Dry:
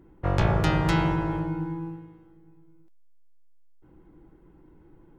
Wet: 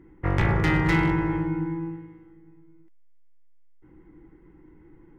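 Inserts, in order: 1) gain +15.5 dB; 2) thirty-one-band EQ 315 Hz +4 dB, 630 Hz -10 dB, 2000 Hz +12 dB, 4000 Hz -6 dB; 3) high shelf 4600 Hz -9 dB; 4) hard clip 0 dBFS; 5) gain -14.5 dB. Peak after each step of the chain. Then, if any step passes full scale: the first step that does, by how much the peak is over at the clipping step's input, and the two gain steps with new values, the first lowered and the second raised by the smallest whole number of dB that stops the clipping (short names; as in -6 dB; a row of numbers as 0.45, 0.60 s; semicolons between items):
+7.5, +9.0, +8.5, 0.0, -14.5 dBFS; step 1, 8.5 dB; step 1 +6.5 dB, step 5 -5.5 dB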